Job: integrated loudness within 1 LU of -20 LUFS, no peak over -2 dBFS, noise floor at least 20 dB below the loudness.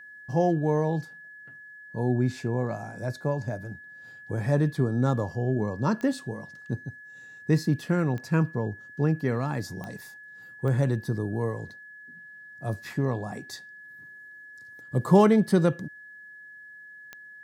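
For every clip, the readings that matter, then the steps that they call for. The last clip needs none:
clicks 5; steady tone 1700 Hz; tone level -44 dBFS; loudness -27.0 LUFS; peak -6.0 dBFS; loudness target -20.0 LUFS
-> de-click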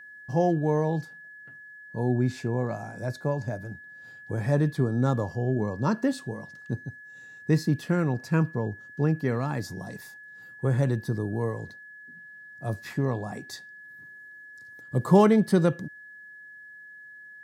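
clicks 0; steady tone 1700 Hz; tone level -44 dBFS
-> notch 1700 Hz, Q 30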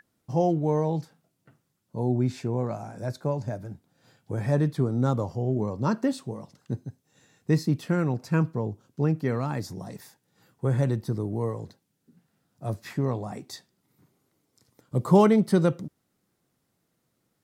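steady tone none; loudness -27.0 LUFS; peak -6.0 dBFS; loudness target -20.0 LUFS
-> gain +7 dB; limiter -2 dBFS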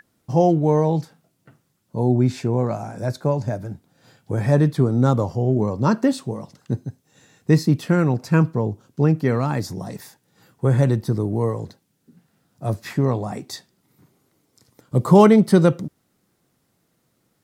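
loudness -20.0 LUFS; peak -2.0 dBFS; noise floor -69 dBFS

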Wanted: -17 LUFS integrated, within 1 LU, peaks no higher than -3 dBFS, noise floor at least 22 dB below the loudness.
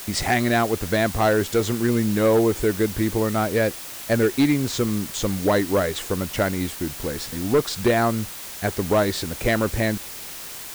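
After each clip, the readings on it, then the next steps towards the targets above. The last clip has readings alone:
clipped 0.8%; flat tops at -12.5 dBFS; noise floor -36 dBFS; noise floor target -45 dBFS; loudness -22.5 LUFS; peak -12.5 dBFS; loudness target -17.0 LUFS
-> clip repair -12.5 dBFS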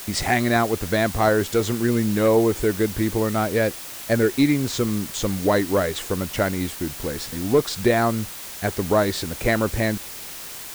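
clipped 0.0%; noise floor -36 dBFS; noise floor target -44 dBFS
-> denoiser 8 dB, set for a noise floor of -36 dBFS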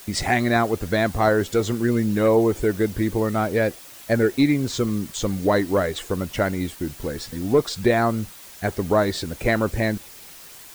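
noise floor -43 dBFS; noise floor target -45 dBFS
-> denoiser 6 dB, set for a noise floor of -43 dBFS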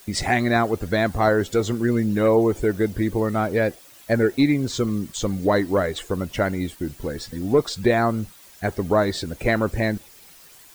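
noise floor -48 dBFS; loudness -22.5 LUFS; peak -5.5 dBFS; loudness target -17.0 LUFS
-> gain +5.5 dB; limiter -3 dBFS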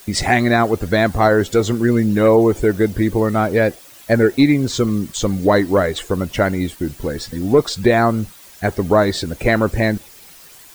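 loudness -17.0 LUFS; peak -3.0 dBFS; noise floor -43 dBFS

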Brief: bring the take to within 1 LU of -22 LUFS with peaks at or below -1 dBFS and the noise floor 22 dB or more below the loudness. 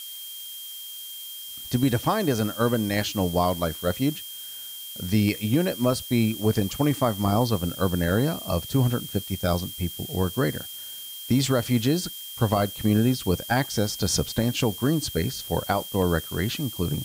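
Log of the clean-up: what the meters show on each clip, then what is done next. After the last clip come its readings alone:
steady tone 3200 Hz; tone level -39 dBFS; noise floor -38 dBFS; noise floor target -48 dBFS; loudness -25.5 LUFS; peak -10.5 dBFS; loudness target -22.0 LUFS
-> notch 3200 Hz, Q 30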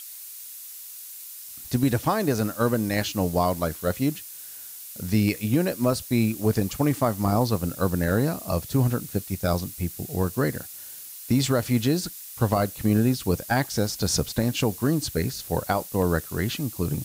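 steady tone none; noise floor -41 dBFS; noise floor target -47 dBFS
-> noise print and reduce 6 dB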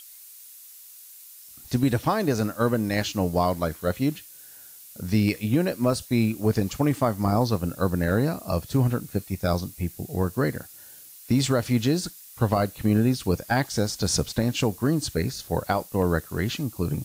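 noise floor -47 dBFS; noise floor target -48 dBFS
-> noise print and reduce 6 dB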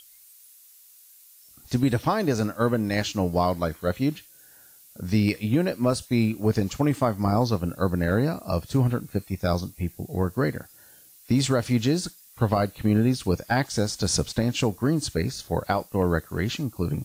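noise floor -53 dBFS; loudness -25.5 LUFS; peak -11.0 dBFS; loudness target -22.0 LUFS
-> gain +3.5 dB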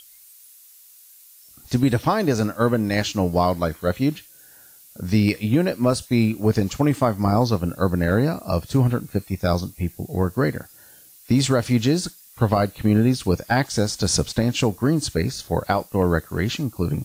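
loudness -22.0 LUFS; peak -7.5 dBFS; noise floor -49 dBFS

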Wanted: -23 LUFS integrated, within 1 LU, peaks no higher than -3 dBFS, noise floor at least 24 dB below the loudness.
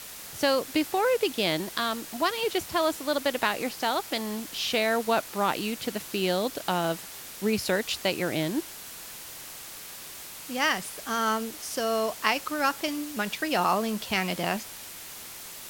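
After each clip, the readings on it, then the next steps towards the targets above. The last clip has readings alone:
noise floor -42 dBFS; noise floor target -52 dBFS; loudness -28.0 LUFS; peak -6.5 dBFS; loudness target -23.0 LUFS
-> denoiser 10 dB, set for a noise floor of -42 dBFS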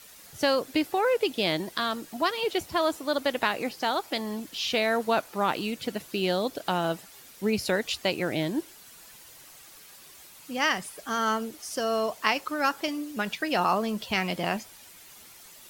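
noise floor -50 dBFS; noise floor target -52 dBFS
-> denoiser 6 dB, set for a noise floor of -50 dBFS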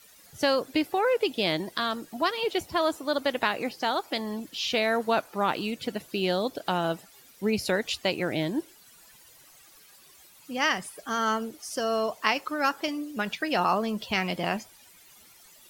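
noise floor -55 dBFS; loudness -28.0 LUFS; peak -7.0 dBFS; loudness target -23.0 LUFS
-> gain +5 dB; limiter -3 dBFS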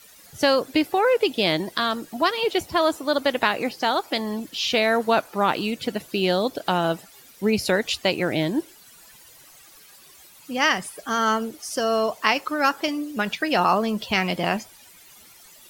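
loudness -23.0 LUFS; peak -3.0 dBFS; noise floor -50 dBFS

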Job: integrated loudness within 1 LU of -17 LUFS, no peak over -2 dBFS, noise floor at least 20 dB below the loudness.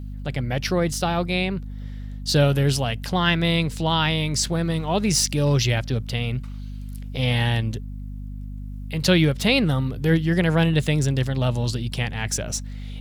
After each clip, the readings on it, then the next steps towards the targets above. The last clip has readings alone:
hum 50 Hz; harmonics up to 250 Hz; hum level -31 dBFS; loudness -22.5 LUFS; peak -6.0 dBFS; loudness target -17.0 LUFS
-> notches 50/100/150/200/250 Hz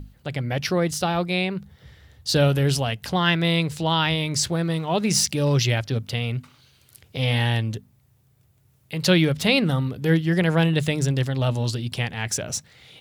hum none; loudness -22.5 LUFS; peak -5.5 dBFS; loudness target -17.0 LUFS
-> gain +5.5 dB; limiter -2 dBFS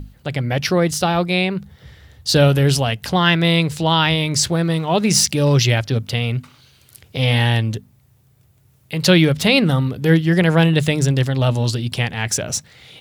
loudness -17.5 LUFS; peak -2.0 dBFS; noise floor -55 dBFS

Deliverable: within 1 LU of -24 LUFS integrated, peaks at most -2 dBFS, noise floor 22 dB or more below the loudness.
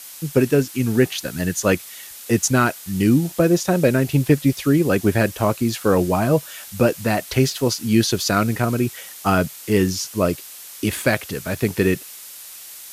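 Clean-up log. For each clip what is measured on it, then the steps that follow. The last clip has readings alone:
noise floor -39 dBFS; noise floor target -42 dBFS; loudness -20.0 LUFS; peak -3.5 dBFS; loudness target -24.0 LUFS
-> noise print and reduce 6 dB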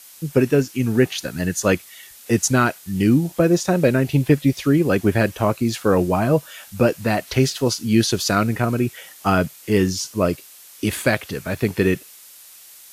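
noise floor -45 dBFS; loudness -20.0 LUFS; peak -3.5 dBFS; loudness target -24.0 LUFS
-> gain -4 dB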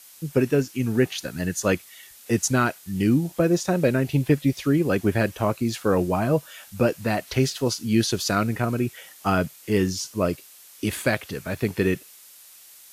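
loudness -24.0 LUFS; peak -7.5 dBFS; noise floor -49 dBFS

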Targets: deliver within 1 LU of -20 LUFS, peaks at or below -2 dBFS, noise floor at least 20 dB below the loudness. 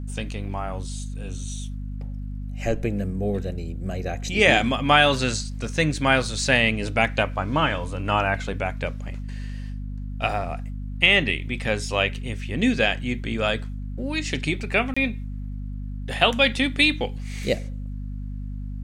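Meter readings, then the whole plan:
dropouts 1; longest dropout 25 ms; hum 50 Hz; harmonics up to 250 Hz; hum level -29 dBFS; loudness -23.0 LUFS; peak -1.5 dBFS; loudness target -20.0 LUFS
-> interpolate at 14.94, 25 ms; notches 50/100/150/200/250 Hz; gain +3 dB; limiter -2 dBFS

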